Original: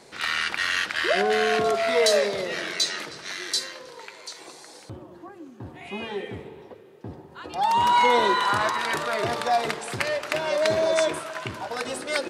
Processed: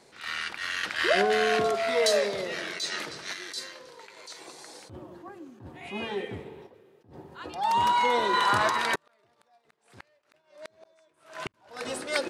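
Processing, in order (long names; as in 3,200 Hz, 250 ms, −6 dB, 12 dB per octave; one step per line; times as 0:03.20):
sample-and-hold tremolo 2.4 Hz
0:08.95–0:11.54: gate with flip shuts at −18 dBFS, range −40 dB
level that may rise only so fast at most 140 dB per second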